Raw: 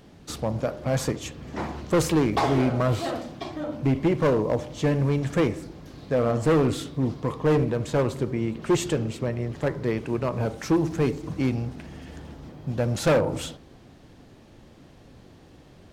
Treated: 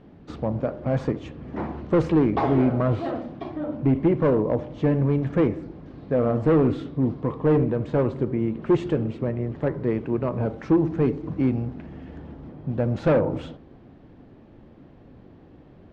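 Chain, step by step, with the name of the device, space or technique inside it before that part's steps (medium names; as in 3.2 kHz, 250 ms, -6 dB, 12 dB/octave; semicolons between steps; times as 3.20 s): phone in a pocket (low-pass 3.2 kHz 12 dB/octave; peaking EQ 270 Hz +3.5 dB 1.4 oct; treble shelf 2.3 kHz -10 dB)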